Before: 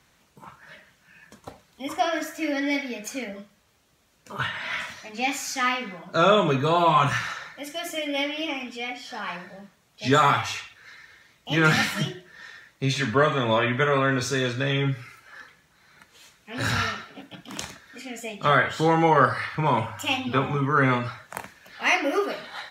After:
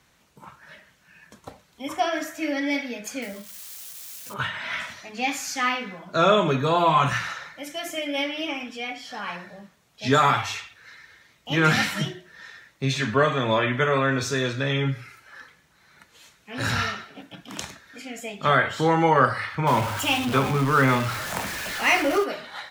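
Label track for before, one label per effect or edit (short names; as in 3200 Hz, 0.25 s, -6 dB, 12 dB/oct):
3.220000	4.340000	switching spikes of -32.5 dBFS
19.670000	22.240000	zero-crossing step of -26.5 dBFS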